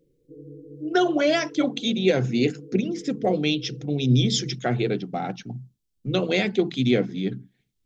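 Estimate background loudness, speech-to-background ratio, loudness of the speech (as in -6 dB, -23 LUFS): -43.5 LUFS, 19.5 dB, -24.0 LUFS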